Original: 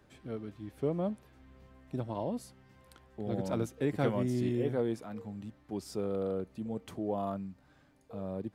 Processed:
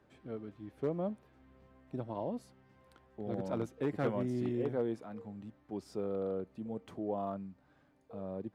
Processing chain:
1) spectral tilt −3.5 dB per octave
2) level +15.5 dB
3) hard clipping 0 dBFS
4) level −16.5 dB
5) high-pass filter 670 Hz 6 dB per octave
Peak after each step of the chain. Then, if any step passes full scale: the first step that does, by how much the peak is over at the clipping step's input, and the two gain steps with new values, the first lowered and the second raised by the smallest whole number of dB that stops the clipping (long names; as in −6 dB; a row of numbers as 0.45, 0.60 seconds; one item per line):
−11.5, +4.0, 0.0, −16.5, −19.5 dBFS
step 2, 4.0 dB
step 2 +11.5 dB, step 4 −12.5 dB